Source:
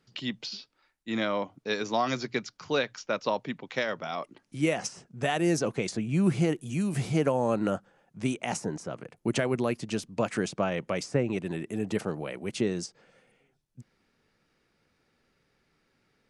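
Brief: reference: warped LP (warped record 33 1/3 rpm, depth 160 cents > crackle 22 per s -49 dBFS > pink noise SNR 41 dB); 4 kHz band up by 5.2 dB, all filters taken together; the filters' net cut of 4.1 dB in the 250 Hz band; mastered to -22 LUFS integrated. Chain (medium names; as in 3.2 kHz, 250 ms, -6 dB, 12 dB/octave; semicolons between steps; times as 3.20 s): peaking EQ 250 Hz -6 dB; peaking EQ 4 kHz +6.5 dB; warped record 33 1/3 rpm, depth 160 cents; crackle 22 per s -49 dBFS; pink noise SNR 41 dB; trim +9.5 dB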